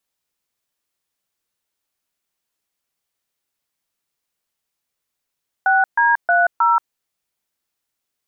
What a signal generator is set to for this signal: DTMF "6D30", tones 180 ms, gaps 134 ms, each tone -14.5 dBFS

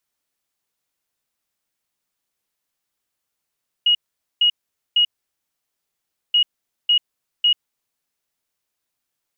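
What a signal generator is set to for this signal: beep pattern sine 2.89 kHz, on 0.09 s, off 0.46 s, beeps 3, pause 1.29 s, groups 2, -12 dBFS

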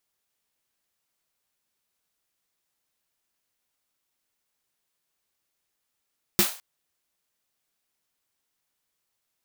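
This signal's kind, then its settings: snare drum length 0.21 s, tones 200 Hz, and 350 Hz, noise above 540 Hz, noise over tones 1 dB, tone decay 0.12 s, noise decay 0.38 s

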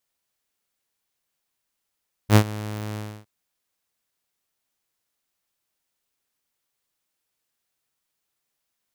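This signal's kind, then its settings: ADSR saw 106 Hz, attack 67 ms, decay 75 ms, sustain -20 dB, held 0.67 s, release 293 ms -6.5 dBFS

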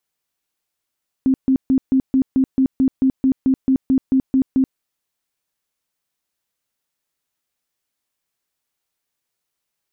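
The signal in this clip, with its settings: tone bursts 264 Hz, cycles 21, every 0.22 s, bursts 16, -11.5 dBFS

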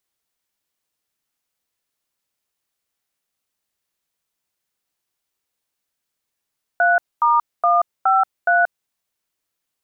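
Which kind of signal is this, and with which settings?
DTMF "3*153", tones 181 ms, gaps 237 ms, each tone -15 dBFS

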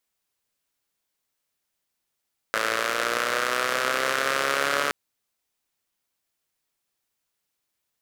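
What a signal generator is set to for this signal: four-cylinder engine model, changing speed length 2.37 s, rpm 3300, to 4300, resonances 550/1300 Hz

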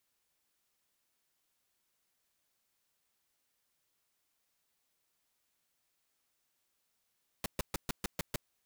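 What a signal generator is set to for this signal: noise bursts pink, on 0.02 s, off 0.13 s, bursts 7, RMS -33.5 dBFS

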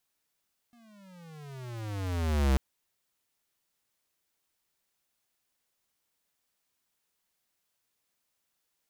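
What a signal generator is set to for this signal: gliding synth tone square, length 1.84 s, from 242 Hz, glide -23 st, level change +36.5 dB, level -22.5 dB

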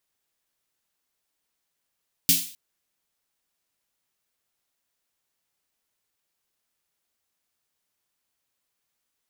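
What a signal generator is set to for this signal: snare drum length 0.26 s, tones 170 Hz, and 270 Hz, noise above 2.7 kHz, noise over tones 11.5 dB, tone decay 0.30 s, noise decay 0.45 s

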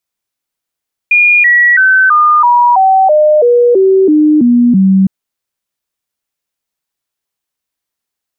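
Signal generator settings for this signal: stepped sine 2.43 kHz down, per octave 3, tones 12, 0.33 s, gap 0.00 s -4 dBFS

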